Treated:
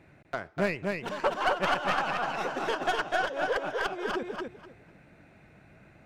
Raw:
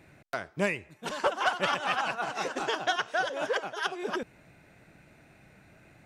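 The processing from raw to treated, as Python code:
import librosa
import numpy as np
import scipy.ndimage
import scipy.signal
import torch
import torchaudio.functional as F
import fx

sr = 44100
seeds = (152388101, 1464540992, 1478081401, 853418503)

y = fx.tracing_dist(x, sr, depth_ms=0.099)
y = fx.high_shelf(y, sr, hz=4500.0, db=-12.0)
y = fx.echo_feedback(y, sr, ms=249, feedback_pct=19, wet_db=-3.5)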